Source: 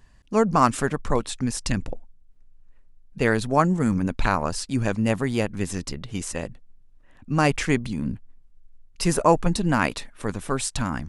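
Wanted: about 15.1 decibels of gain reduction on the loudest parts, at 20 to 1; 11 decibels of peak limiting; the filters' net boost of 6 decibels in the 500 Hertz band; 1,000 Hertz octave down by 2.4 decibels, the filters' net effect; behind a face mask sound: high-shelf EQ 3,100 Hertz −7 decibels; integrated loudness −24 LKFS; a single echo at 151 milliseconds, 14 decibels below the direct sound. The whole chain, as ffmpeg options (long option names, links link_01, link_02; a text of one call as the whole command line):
ffmpeg -i in.wav -af "equalizer=frequency=500:width_type=o:gain=8.5,equalizer=frequency=1000:width_type=o:gain=-5,acompressor=threshold=-24dB:ratio=20,alimiter=limit=-23.5dB:level=0:latency=1,highshelf=frequency=3100:gain=-7,aecho=1:1:151:0.2,volume=11.5dB" out.wav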